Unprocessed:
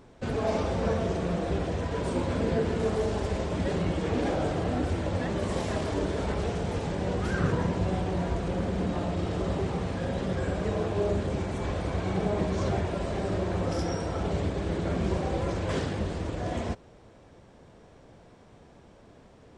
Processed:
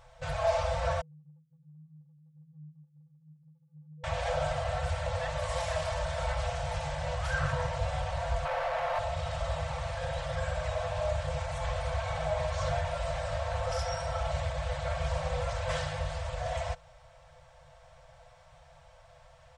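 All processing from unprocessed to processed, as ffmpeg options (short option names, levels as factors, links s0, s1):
-filter_complex "[0:a]asettb=1/sr,asplit=3[s0][s1][s2];[s0]atrim=end=1.014[s3];[s1]atrim=start=1.01:end=4.04,asetpts=PTS-STARTPTS,afade=t=in:d=0.004:c=qsin,afade=t=out:st=3.026:d=0.004:c=qsin,asuperpass=centerf=160:order=8:qfactor=6.7,acompressor=threshold=0.00501:ratio=2:attack=3.2:release=140:knee=1:detection=peak[s4];[s2]atrim=start=4.036[s5];[s3][s4]acrossfade=d=0.004:c1=hsin:c2=qsin[s6];[s6][s5]acrossfade=d=0.004:c1=qsin:c2=hsin,asettb=1/sr,asplit=3[s7][s8][s9];[s7]atrim=end=8.454[s10];[s8]atrim=start=8.45:end=8.99,asetpts=PTS-STARTPTS,afade=t=in:d=0.004:c=qsin,afade=t=out:st=0.536:d=0.004:c=qsin,acrossover=split=440 2600:gain=0.0891 1 0.224[s11][s12][s13];[s11][s12][s13]amix=inputs=3:normalize=0,asplit=2[s14][s15];[s15]highpass=f=720:p=1,volume=28.2,asoftclip=type=tanh:threshold=0.0708[s16];[s14][s16]amix=inputs=2:normalize=0,lowpass=f=1200:p=1,volume=0.501[s17];[s9]atrim=start=8.986[s18];[s10][s17]acrossfade=d=0.004:c1=hsin:c2=qsin[s19];[s19][s18]acrossfade=d=0.004:c1=qsin:c2=hsin,afftfilt=real='re*(1-between(b*sr/4096,160,490))':imag='im*(1-between(b*sr/4096,160,490))':win_size=4096:overlap=0.75,aecho=1:1:4.5:0.52"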